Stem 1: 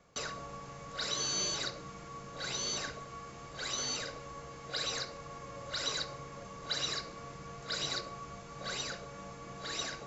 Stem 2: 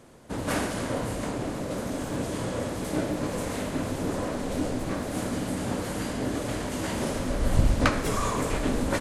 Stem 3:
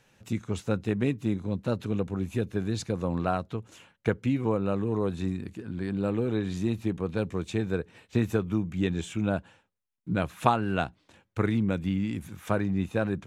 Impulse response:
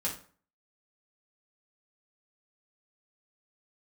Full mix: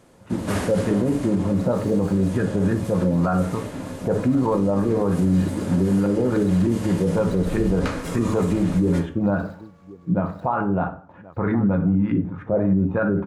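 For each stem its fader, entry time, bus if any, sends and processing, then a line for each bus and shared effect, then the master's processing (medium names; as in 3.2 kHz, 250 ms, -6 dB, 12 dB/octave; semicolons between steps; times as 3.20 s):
-15.5 dB, 0.60 s, no send, echo send -15 dB, median filter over 15 samples
-2.0 dB, 0.00 s, send -16 dB, no echo send, auto duck -14 dB, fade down 1.85 s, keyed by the third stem
-3.5 dB, 0.00 s, send -3.5 dB, echo send -21.5 dB, LFO low-pass saw up 3.3 Hz 310–1700 Hz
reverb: on, RT60 0.45 s, pre-delay 3 ms
echo: delay 1080 ms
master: level rider gain up to 9 dB; peak limiter -12 dBFS, peak gain reduction 10.5 dB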